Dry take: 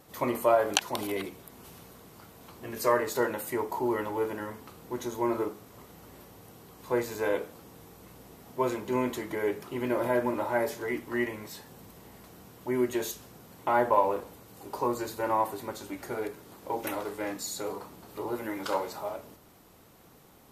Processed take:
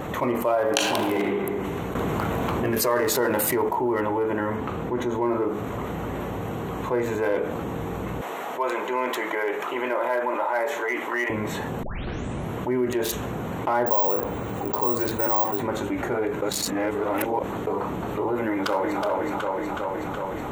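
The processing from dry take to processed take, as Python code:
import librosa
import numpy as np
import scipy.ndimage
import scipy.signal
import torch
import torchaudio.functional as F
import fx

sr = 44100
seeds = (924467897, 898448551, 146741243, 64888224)

y = fx.reverb_throw(x, sr, start_s=0.59, length_s=0.73, rt60_s=1.3, drr_db=0.0)
y = fx.env_flatten(y, sr, amount_pct=50, at=(1.95, 3.69))
y = fx.high_shelf(y, sr, hz=6600.0, db=-7.0, at=(4.56, 5.26))
y = fx.highpass(y, sr, hz=650.0, slope=12, at=(8.21, 11.3))
y = fx.resample_bad(y, sr, factor=2, down='filtered', up='zero_stuff', at=(13.86, 15.62))
y = fx.echo_throw(y, sr, start_s=18.46, length_s=0.56, ms=370, feedback_pct=55, wet_db=-4.5)
y = fx.edit(y, sr, fx.tape_start(start_s=11.83, length_s=0.74),
    fx.reverse_span(start_s=16.42, length_s=1.25), tone=tone)
y = fx.wiener(y, sr, points=9)
y = fx.env_flatten(y, sr, amount_pct=70)
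y = F.gain(torch.from_numpy(y), -3.0).numpy()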